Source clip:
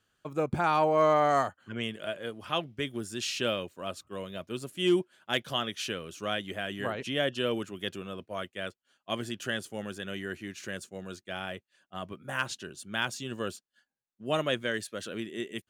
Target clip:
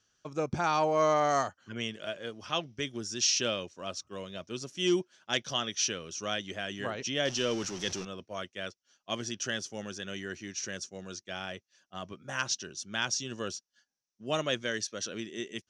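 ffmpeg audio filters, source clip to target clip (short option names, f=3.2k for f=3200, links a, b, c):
-filter_complex "[0:a]asettb=1/sr,asplit=3[a][b][c];[a]atrim=end=7.254[d];[b]atrim=start=7.25:end=8.05,asetpts=PTS-STARTPTS,afade=t=in:d=0.004:c=qsin,afade=t=out:st=0.796:d=0.004:c=qsin,aeval=exprs='val(0)+0.5*0.0141*sgn(val(0))':c=same[e];[c]atrim=start=8.046[f];[d][e]acrossfade=d=0.004:c1=hsin:c2=qsin[g];[g][f]acrossfade=d=0.004:c1=qsin:c2=hsin,lowpass=f=5.8k:t=q:w=8.7,volume=-2.5dB"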